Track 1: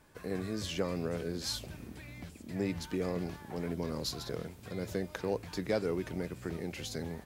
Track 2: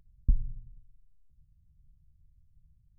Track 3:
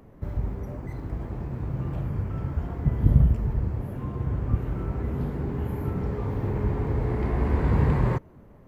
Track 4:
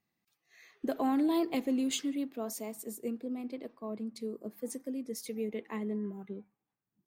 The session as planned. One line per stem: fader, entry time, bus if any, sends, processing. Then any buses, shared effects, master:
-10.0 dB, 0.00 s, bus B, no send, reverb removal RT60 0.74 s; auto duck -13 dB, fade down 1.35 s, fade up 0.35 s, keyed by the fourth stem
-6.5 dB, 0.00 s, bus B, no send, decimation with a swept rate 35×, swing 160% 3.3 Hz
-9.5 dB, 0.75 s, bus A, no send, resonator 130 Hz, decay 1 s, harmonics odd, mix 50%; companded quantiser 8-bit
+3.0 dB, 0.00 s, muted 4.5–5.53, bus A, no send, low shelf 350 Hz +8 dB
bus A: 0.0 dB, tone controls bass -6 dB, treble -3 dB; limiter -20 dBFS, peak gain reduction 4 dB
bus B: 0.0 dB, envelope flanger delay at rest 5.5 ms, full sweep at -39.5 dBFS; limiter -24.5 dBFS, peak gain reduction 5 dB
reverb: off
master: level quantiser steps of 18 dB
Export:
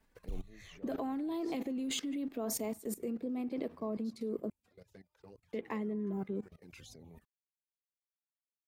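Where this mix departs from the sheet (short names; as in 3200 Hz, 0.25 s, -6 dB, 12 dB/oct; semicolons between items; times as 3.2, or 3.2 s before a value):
stem 1 -10.0 dB -> -1.0 dB; stem 3: muted; stem 4 +3.0 dB -> +9.5 dB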